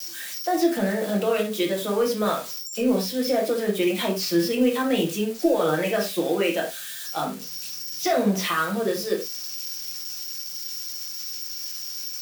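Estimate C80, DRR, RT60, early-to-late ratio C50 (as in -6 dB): 14.5 dB, -2.0 dB, not exponential, 8.5 dB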